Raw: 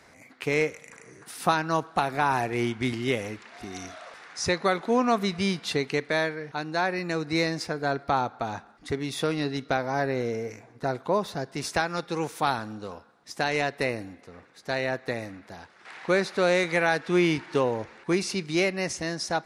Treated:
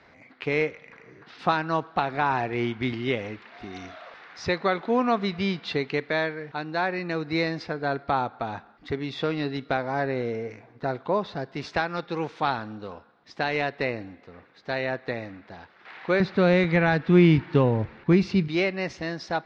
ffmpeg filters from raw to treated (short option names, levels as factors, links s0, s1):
-filter_complex "[0:a]asettb=1/sr,asplit=3[s0][s1][s2];[s0]atrim=end=0.714[s3];[s1]atrim=start=0.71:end=1.39,asetpts=PTS-STARTPTS,afade=t=in:d=0.004:c=qsin,afade=t=out:st=0.676:d=0.004:c=qsin,lowpass=f=5600:w=0.5412,lowpass=f=5600:w=1.3066[s4];[s2]atrim=start=1.386[s5];[s3][s4]acrossfade=d=0.004:c1=hsin:c2=qsin[s6];[s6][s5]acrossfade=d=0.004:c1=qsin:c2=hsin,asettb=1/sr,asplit=3[s7][s8][s9];[s7]atrim=end=16.204[s10];[s8]atrim=start=16.2:end=18.48,asetpts=PTS-STARTPTS,afade=t=in:d=0.004:c=qsin,afade=t=out:st=2.276:d=0.004:c=qsin,bass=f=250:g=15,treble=f=4000:g=-2[s11];[s9]atrim=start=18.476[s12];[s10][s11]acrossfade=d=0.004:c1=hsin:c2=qsin[s13];[s13][s12]acrossfade=d=0.004:c1=qsin:c2=hsin,lowpass=f=4200:w=0.5412,lowpass=f=4200:w=1.3066"